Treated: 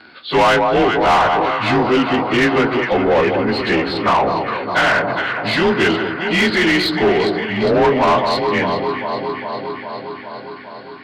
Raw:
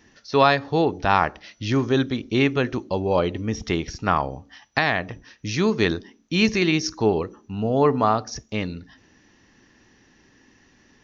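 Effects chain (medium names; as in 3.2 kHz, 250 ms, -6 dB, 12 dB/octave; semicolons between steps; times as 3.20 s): frequency axis rescaled in octaves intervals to 91%; echo whose repeats swap between lows and highs 203 ms, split 1.1 kHz, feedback 83%, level -10 dB; overdrive pedal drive 25 dB, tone 3 kHz, clips at -5.5 dBFS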